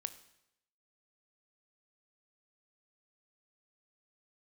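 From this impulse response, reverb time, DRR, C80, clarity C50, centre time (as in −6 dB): 0.80 s, 11.5 dB, 16.5 dB, 14.0 dB, 6 ms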